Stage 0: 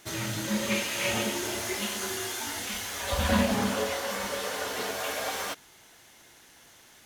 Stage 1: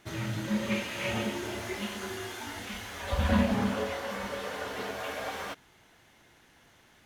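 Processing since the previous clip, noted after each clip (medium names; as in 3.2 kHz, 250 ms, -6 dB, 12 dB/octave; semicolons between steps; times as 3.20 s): tone controls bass +5 dB, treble -10 dB; trim -3 dB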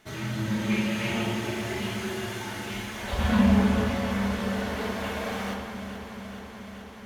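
echo whose repeats swap between lows and highs 214 ms, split 1.2 kHz, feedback 87%, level -9.5 dB; reverberation RT60 1.4 s, pre-delay 5 ms, DRR 1 dB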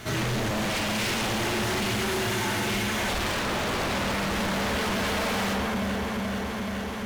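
power-law waveshaper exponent 0.7; pre-echo 58 ms -17 dB; wavefolder -25 dBFS; trim +2 dB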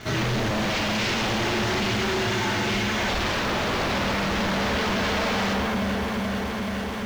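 low-pass 6.3 kHz 24 dB/octave; in parallel at -9 dB: bit crusher 6-bit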